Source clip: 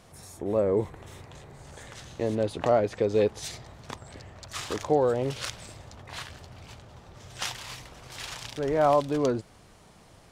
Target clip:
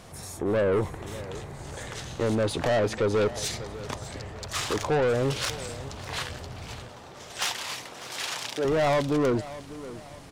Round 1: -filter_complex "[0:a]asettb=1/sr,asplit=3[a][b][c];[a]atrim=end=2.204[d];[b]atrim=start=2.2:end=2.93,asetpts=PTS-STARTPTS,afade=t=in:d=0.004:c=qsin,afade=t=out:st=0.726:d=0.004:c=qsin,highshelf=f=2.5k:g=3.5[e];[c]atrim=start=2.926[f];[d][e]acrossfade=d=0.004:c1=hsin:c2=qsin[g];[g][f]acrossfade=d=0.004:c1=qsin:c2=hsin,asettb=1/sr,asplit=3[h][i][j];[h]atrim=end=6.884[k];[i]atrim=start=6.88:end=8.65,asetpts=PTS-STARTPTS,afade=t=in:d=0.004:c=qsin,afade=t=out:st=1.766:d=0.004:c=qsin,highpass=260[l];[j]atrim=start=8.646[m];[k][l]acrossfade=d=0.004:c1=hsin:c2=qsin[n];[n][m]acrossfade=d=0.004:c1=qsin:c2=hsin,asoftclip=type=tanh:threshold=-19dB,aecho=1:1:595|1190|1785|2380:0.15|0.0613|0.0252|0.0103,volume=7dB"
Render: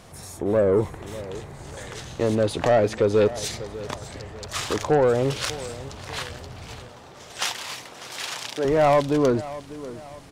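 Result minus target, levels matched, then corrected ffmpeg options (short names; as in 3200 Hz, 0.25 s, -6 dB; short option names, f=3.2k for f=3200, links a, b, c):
soft clip: distortion -7 dB
-filter_complex "[0:a]asettb=1/sr,asplit=3[a][b][c];[a]atrim=end=2.204[d];[b]atrim=start=2.2:end=2.93,asetpts=PTS-STARTPTS,afade=t=in:d=0.004:c=qsin,afade=t=out:st=0.726:d=0.004:c=qsin,highshelf=f=2.5k:g=3.5[e];[c]atrim=start=2.926[f];[d][e]acrossfade=d=0.004:c1=hsin:c2=qsin[g];[g][f]acrossfade=d=0.004:c1=qsin:c2=hsin,asettb=1/sr,asplit=3[h][i][j];[h]atrim=end=6.884[k];[i]atrim=start=6.88:end=8.65,asetpts=PTS-STARTPTS,afade=t=in:d=0.004:c=qsin,afade=t=out:st=1.766:d=0.004:c=qsin,highpass=260[l];[j]atrim=start=8.646[m];[k][l]acrossfade=d=0.004:c1=hsin:c2=qsin[n];[n][m]acrossfade=d=0.004:c1=qsin:c2=hsin,asoftclip=type=tanh:threshold=-27.5dB,aecho=1:1:595|1190|1785|2380:0.15|0.0613|0.0252|0.0103,volume=7dB"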